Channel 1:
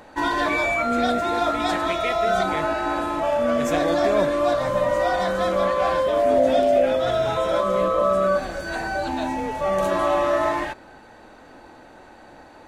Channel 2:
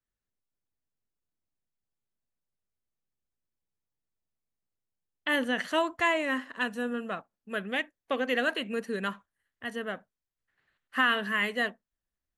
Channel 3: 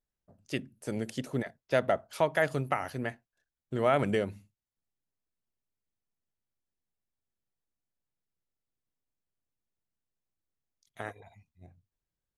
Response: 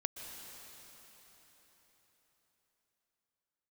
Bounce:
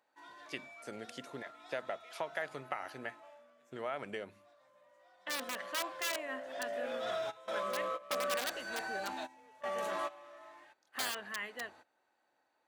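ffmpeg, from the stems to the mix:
-filter_complex "[0:a]asoftclip=type=tanh:threshold=-15dB,volume=1dB,afade=type=out:start_time=3.26:duration=0.25:silence=0.298538,afade=type=in:start_time=6.46:duration=0.64:silence=0.298538[link_01];[1:a]highshelf=frequency=2100:gain=-11,dynaudnorm=framelen=220:gausssize=9:maxgain=6.5dB,aeval=exprs='(mod(6.31*val(0)+1,2)-1)/6.31':channel_layout=same,volume=-12.5dB,asplit=2[link_02][link_03];[2:a]lowpass=frequency=3700:poles=1,acompressor=threshold=-29dB:ratio=6,volume=-1dB[link_04];[link_03]apad=whole_len=558948[link_05];[link_01][link_05]sidechaingate=range=-18dB:threshold=-57dB:ratio=16:detection=peak[link_06];[link_06][link_02][link_04]amix=inputs=3:normalize=0,highpass=frequency=930:poles=1"

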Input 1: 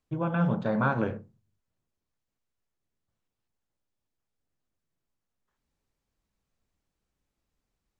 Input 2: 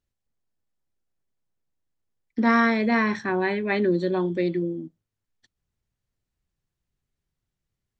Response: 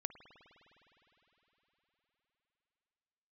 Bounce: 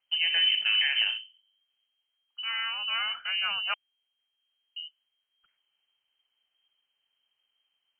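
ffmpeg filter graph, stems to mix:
-filter_complex "[0:a]alimiter=limit=-19.5dB:level=0:latency=1:release=46,volume=3dB,asplit=2[link_01][link_02];[1:a]volume=-5dB,asplit=3[link_03][link_04][link_05];[link_03]atrim=end=3.74,asetpts=PTS-STARTPTS,afade=type=out:start_time=3.736:duration=0.004:curve=hsin[link_06];[link_04]atrim=start=3.74:end=4.76,asetpts=PTS-STARTPTS,volume=0[link_07];[link_05]atrim=start=4.76,asetpts=PTS-STARTPTS,afade=type=in:duration=0.004:curve=hsin[link_08];[link_06][link_07][link_08]concat=n=3:v=0:a=1[link_09];[link_02]apad=whole_len=352623[link_10];[link_09][link_10]sidechaincompress=threshold=-49dB:ratio=4:attack=9.5:release=1270[link_11];[link_01][link_11]amix=inputs=2:normalize=0,lowpass=frequency=2700:width_type=q:width=0.5098,lowpass=frequency=2700:width_type=q:width=0.6013,lowpass=frequency=2700:width_type=q:width=0.9,lowpass=frequency=2700:width_type=q:width=2.563,afreqshift=-3200"

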